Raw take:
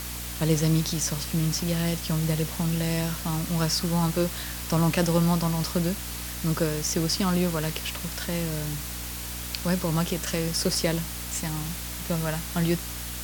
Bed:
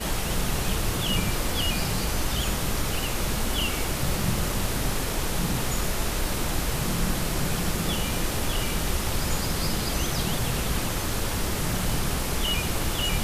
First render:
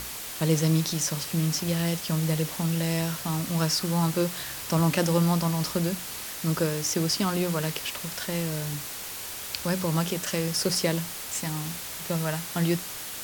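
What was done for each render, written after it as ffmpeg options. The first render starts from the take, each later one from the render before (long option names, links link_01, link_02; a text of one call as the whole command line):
ffmpeg -i in.wav -af "bandreject=frequency=60:width_type=h:width=6,bandreject=frequency=120:width_type=h:width=6,bandreject=frequency=180:width_type=h:width=6,bandreject=frequency=240:width_type=h:width=6,bandreject=frequency=300:width_type=h:width=6" out.wav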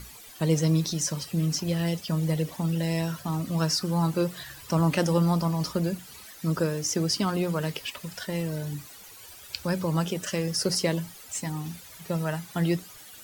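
ffmpeg -i in.wav -af "afftdn=noise_reduction=14:noise_floor=-37" out.wav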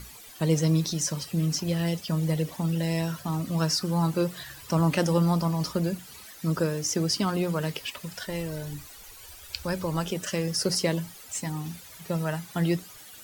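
ffmpeg -i in.wav -filter_complex "[0:a]asplit=3[link_01][link_02][link_03];[link_01]afade=type=out:start_time=8.24:duration=0.02[link_04];[link_02]asubboost=boost=6.5:cutoff=57,afade=type=in:start_time=8.24:duration=0.02,afade=type=out:start_time=10.11:duration=0.02[link_05];[link_03]afade=type=in:start_time=10.11:duration=0.02[link_06];[link_04][link_05][link_06]amix=inputs=3:normalize=0" out.wav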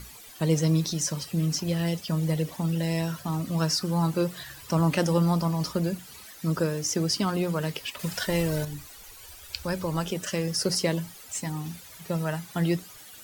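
ffmpeg -i in.wav -filter_complex "[0:a]asettb=1/sr,asplit=3[link_01][link_02][link_03];[link_01]atrim=end=7.994[link_04];[link_02]atrim=start=7.99:end=8.65,asetpts=PTS-STARTPTS,afade=type=in:duration=0.004:curve=qsin,afade=type=out:start_time=0.656:duration=0.004:curve=qsin,acontrast=69[link_05];[link_03]atrim=start=8.646[link_06];[link_04][link_05]acrossfade=duration=0.004:curve1=hsin:curve2=qsin[link_07];[link_07][link_06]acrossfade=duration=0.004:curve1=qsin:curve2=hsin" out.wav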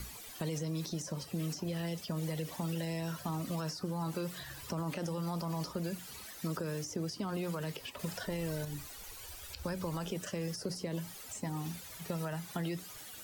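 ffmpeg -i in.wav -filter_complex "[0:a]alimiter=limit=-20dB:level=0:latency=1:release=45,acrossover=split=310|1000[link_01][link_02][link_03];[link_01]acompressor=threshold=-39dB:ratio=4[link_04];[link_02]acompressor=threshold=-41dB:ratio=4[link_05];[link_03]acompressor=threshold=-45dB:ratio=4[link_06];[link_04][link_05][link_06]amix=inputs=3:normalize=0" out.wav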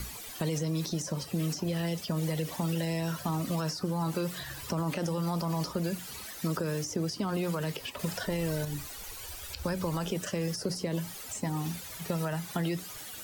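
ffmpeg -i in.wav -af "volume=5.5dB" out.wav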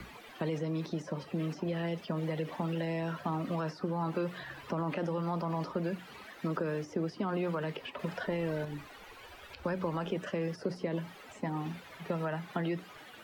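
ffmpeg -i in.wav -filter_complex "[0:a]acrossover=split=170 3100:gain=0.224 1 0.0708[link_01][link_02][link_03];[link_01][link_02][link_03]amix=inputs=3:normalize=0" out.wav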